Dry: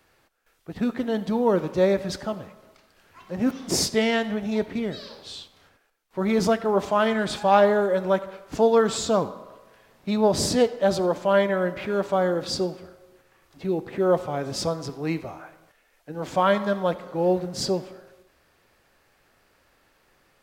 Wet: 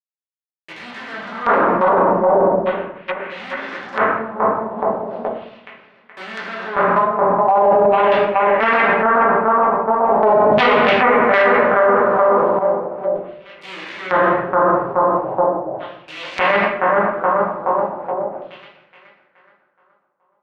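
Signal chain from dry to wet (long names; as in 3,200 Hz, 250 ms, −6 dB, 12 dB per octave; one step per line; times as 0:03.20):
gap after every zero crossing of 0.21 ms
brick-wall band-stop 1,100–2,500 Hz
log-companded quantiser 2 bits
tuned comb filter 210 Hz, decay 0.46 s, mix 30%
noise gate −25 dBFS, range −22 dB
delay with a low-pass on its return 423 ms, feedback 39%, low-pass 1,400 Hz, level −3.5 dB
auto-filter band-pass saw down 0.38 Hz 650–3,300 Hz
convolution reverb RT60 0.70 s, pre-delay 5 ms, DRR −5 dB
treble cut that deepens with the level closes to 970 Hz, closed at −46.5 dBFS
boost into a limiter +34.5 dB
0:10.09–0:12.59: envelope flattener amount 70%
level −5 dB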